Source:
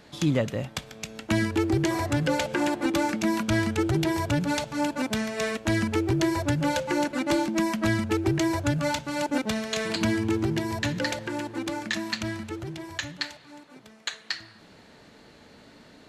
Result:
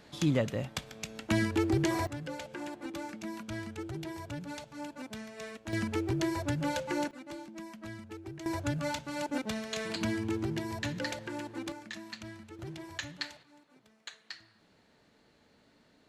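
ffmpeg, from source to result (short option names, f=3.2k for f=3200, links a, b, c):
-af "asetnsamples=n=441:p=0,asendcmd='2.07 volume volume -15dB;5.73 volume volume -7dB;7.11 volume volume -19.5dB;8.46 volume volume -7.5dB;11.72 volume volume -14dB;12.59 volume volume -6.5dB;13.43 volume volume -13.5dB',volume=-4dB"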